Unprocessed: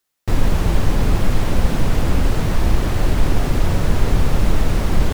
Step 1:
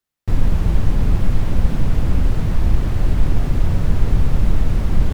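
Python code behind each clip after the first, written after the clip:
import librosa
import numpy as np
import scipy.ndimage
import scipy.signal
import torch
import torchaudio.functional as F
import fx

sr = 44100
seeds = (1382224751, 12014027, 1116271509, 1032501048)

y = fx.bass_treble(x, sr, bass_db=8, treble_db=-3)
y = F.gain(torch.from_numpy(y), -7.0).numpy()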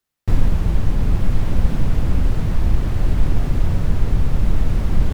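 y = fx.rider(x, sr, range_db=10, speed_s=0.5)
y = F.gain(torch.from_numpy(y), -1.0).numpy()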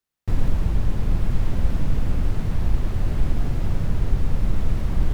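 y = x + 10.0 ** (-5.0 / 20.0) * np.pad(x, (int(106 * sr / 1000.0), 0))[:len(x)]
y = F.gain(torch.from_numpy(y), -5.5).numpy()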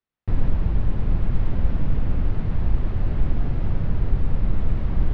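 y = fx.air_absorb(x, sr, metres=260.0)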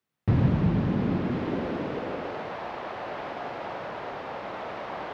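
y = fx.filter_sweep_highpass(x, sr, from_hz=130.0, to_hz=680.0, start_s=0.35, end_s=2.62, q=1.5)
y = F.gain(torch.from_numpy(y), 5.5).numpy()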